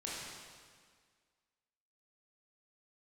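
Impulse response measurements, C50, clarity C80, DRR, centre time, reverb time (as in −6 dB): −2.5 dB, 0.0 dB, −7.0 dB, 124 ms, 1.8 s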